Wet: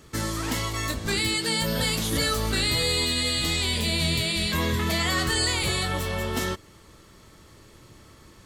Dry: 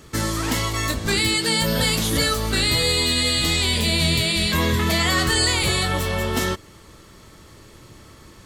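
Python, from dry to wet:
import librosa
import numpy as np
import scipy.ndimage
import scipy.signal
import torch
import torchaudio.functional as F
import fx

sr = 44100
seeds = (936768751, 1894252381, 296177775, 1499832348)

y = fx.env_flatten(x, sr, amount_pct=50, at=(2.12, 3.05))
y = y * 10.0 ** (-5.0 / 20.0)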